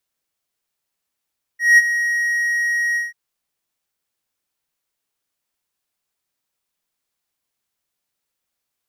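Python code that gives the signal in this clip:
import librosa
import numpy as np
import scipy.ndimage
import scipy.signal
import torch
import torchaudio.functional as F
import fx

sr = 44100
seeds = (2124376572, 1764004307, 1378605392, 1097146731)

y = fx.adsr_tone(sr, wave='triangle', hz=1890.0, attack_ms=188.0, decay_ms=31.0, sustain_db=-11.5, held_s=1.37, release_ms=168.0, level_db=-3.5)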